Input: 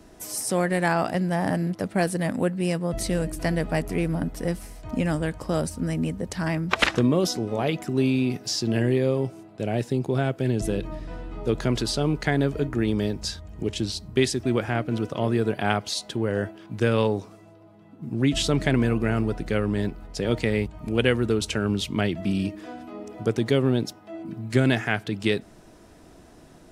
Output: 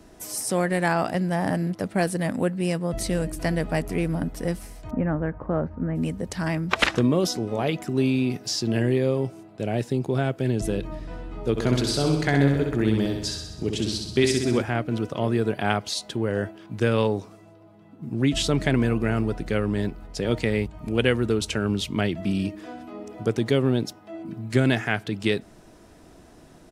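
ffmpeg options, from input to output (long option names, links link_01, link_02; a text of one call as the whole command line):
ffmpeg -i in.wav -filter_complex "[0:a]asplit=3[link_01][link_02][link_03];[link_01]afade=type=out:start_time=4.9:duration=0.02[link_04];[link_02]lowpass=frequency=1700:width=0.5412,lowpass=frequency=1700:width=1.3066,afade=type=in:start_time=4.9:duration=0.02,afade=type=out:start_time=5.95:duration=0.02[link_05];[link_03]afade=type=in:start_time=5.95:duration=0.02[link_06];[link_04][link_05][link_06]amix=inputs=3:normalize=0,asplit=3[link_07][link_08][link_09];[link_07]afade=type=out:start_time=11.56:duration=0.02[link_10];[link_08]aecho=1:1:64|128|192|256|320|384|448|512|576:0.596|0.357|0.214|0.129|0.0772|0.0463|0.0278|0.0167|0.01,afade=type=in:start_time=11.56:duration=0.02,afade=type=out:start_time=14.61:duration=0.02[link_11];[link_09]afade=type=in:start_time=14.61:duration=0.02[link_12];[link_10][link_11][link_12]amix=inputs=3:normalize=0" out.wav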